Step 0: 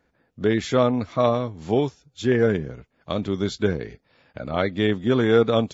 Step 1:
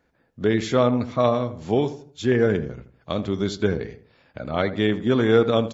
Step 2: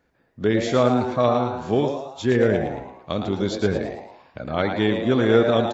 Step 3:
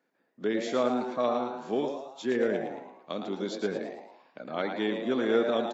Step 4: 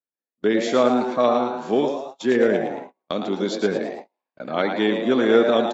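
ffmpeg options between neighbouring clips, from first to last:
-filter_complex "[0:a]asplit=2[a][b];[b]adelay=81,lowpass=f=1.5k:p=1,volume=-12dB,asplit=2[c][d];[d]adelay=81,lowpass=f=1.5k:p=1,volume=0.37,asplit=2[e][f];[f]adelay=81,lowpass=f=1.5k:p=1,volume=0.37,asplit=2[g][h];[h]adelay=81,lowpass=f=1.5k:p=1,volume=0.37[i];[a][c][e][g][i]amix=inputs=5:normalize=0"
-filter_complex "[0:a]asplit=6[a][b][c][d][e][f];[b]adelay=111,afreqshift=130,volume=-7.5dB[g];[c]adelay=222,afreqshift=260,volume=-15dB[h];[d]adelay=333,afreqshift=390,volume=-22.6dB[i];[e]adelay=444,afreqshift=520,volume=-30.1dB[j];[f]adelay=555,afreqshift=650,volume=-37.6dB[k];[a][g][h][i][j][k]amix=inputs=6:normalize=0"
-af "highpass=f=200:w=0.5412,highpass=f=200:w=1.3066,volume=-8dB"
-af "agate=range=-36dB:threshold=-43dB:ratio=16:detection=peak,volume=9dB"

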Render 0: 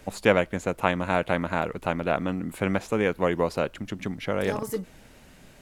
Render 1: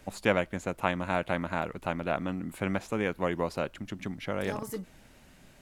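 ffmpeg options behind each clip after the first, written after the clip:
-af "equalizer=f=460:w=4.5:g=-4,volume=-4.5dB"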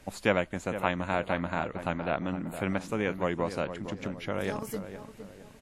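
-filter_complex "[0:a]asplit=2[a][b];[b]adelay=461,lowpass=f=1.5k:p=1,volume=-10dB,asplit=2[c][d];[d]adelay=461,lowpass=f=1.5k:p=1,volume=0.41,asplit=2[e][f];[f]adelay=461,lowpass=f=1.5k:p=1,volume=0.41,asplit=2[g][h];[h]adelay=461,lowpass=f=1.5k:p=1,volume=0.41[i];[a][c][e][g][i]amix=inputs=5:normalize=0" -ar 48000 -c:a wmav2 -b:a 64k

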